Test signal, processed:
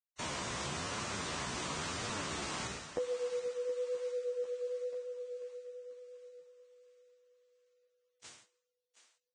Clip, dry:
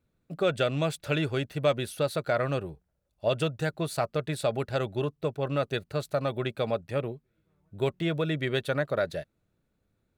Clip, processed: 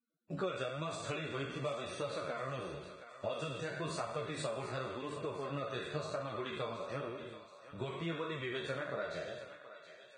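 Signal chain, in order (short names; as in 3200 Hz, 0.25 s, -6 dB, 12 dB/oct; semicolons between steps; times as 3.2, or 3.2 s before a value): spectral trails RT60 0.74 s; HPF 98 Hz 12 dB/oct; notch 800 Hz, Q 20; gate -57 dBFS, range -11 dB; LPF 8100 Hz 24 dB/oct; dynamic EQ 1100 Hz, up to +7 dB, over -48 dBFS, Q 3.3; compressor 10:1, threshold -34 dBFS; flange 0.96 Hz, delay 8.1 ms, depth 8.9 ms, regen +2%; thinning echo 0.723 s, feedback 53%, high-pass 650 Hz, level -11.5 dB; gain +1 dB; Vorbis 16 kbps 22050 Hz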